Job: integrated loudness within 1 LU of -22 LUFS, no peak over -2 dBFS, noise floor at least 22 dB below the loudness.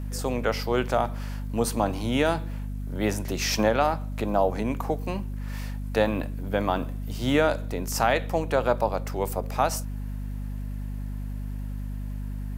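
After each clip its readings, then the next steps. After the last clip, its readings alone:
ticks 26/s; hum 50 Hz; harmonics up to 250 Hz; hum level -30 dBFS; loudness -27.5 LUFS; peak -7.5 dBFS; loudness target -22.0 LUFS
-> de-click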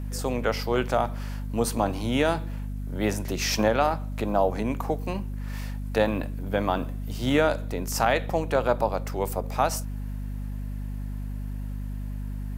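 ticks 0.87/s; hum 50 Hz; harmonics up to 250 Hz; hum level -30 dBFS
-> de-hum 50 Hz, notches 5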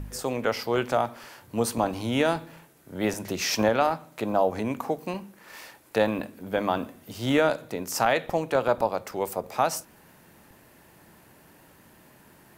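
hum none; loudness -27.0 LUFS; peak -8.5 dBFS; loudness target -22.0 LUFS
-> gain +5 dB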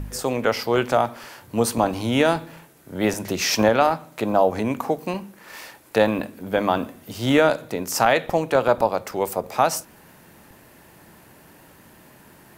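loudness -22.0 LUFS; peak -3.5 dBFS; noise floor -51 dBFS

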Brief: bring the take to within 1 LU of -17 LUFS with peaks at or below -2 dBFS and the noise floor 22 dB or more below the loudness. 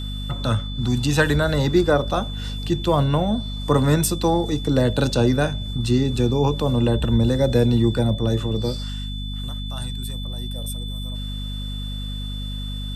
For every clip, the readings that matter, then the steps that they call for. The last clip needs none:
hum 50 Hz; harmonics up to 250 Hz; hum level -26 dBFS; steady tone 3500 Hz; tone level -35 dBFS; loudness -22.0 LUFS; peak -4.0 dBFS; loudness target -17.0 LUFS
-> notches 50/100/150/200/250 Hz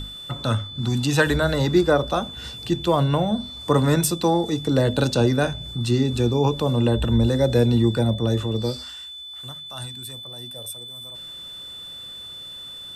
hum none; steady tone 3500 Hz; tone level -35 dBFS
-> notch 3500 Hz, Q 30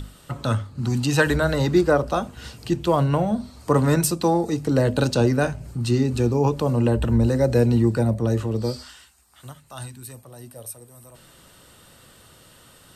steady tone none; loudness -21.5 LUFS; peak -4.5 dBFS; loudness target -17.0 LUFS
-> gain +4.5 dB; limiter -2 dBFS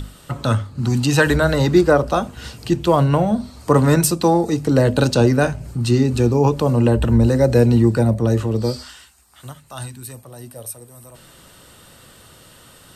loudness -17.0 LUFS; peak -2.0 dBFS; noise floor -47 dBFS

